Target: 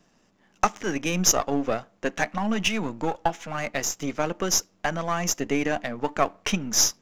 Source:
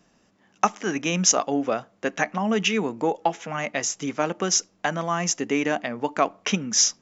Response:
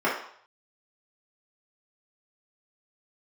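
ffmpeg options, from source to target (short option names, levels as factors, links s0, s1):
-filter_complex "[0:a]aeval=exprs='if(lt(val(0),0),0.447*val(0),val(0))':c=same,asettb=1/sr,asplit=3[s0][s1][s2];[s0]atrim=end=2.294[s3];[s1]atrim=start=2.29:end=3.55,asetpts=PTS-STARTPTS,afade=t=in:d=0.004:c=qsin,afade=t=out:st=1.256:d=0.004:c=qsin,equalizer=f=420:w=3.6:g=-8[s4];[s2]atrim=start=3.546[s5];[s3][s4]acrossfade=d=0.004:c1=hsin:c2=qsin[s6];[s6][s5]acrossfade=d=0.004:c1=qsin:c2=hsin,volume=1.19"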